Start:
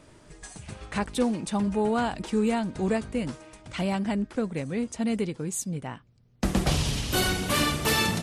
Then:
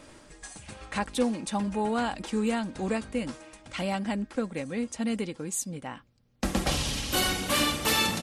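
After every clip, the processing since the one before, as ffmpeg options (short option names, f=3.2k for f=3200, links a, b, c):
-af "lowshelf=f=360:g=-5.5,aecho=1:1:3.7:0.34,areverse,acompressor=mode=upward:threshold=-43dB:ratio=2.5,areverse"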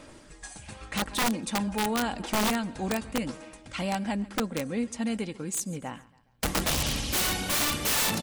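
-af "aecho=1:1:138|276|414:0.1|0.043|0.0185,aphaser=in_gain=1:out_gain=1:delay=1.3:decay=0.23:speed=0.87:type=sinusoidal,aeval=exprs='(mod(10*val(0)+1,2)-1)/10':c=same"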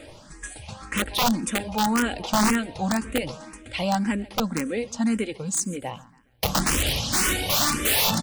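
-filter_complex "[0:a]asplit=2[a][b];[b]afreqshift=1.9[c];[a][c]amix=inputs=2:normalize=1,volume=7.5dB"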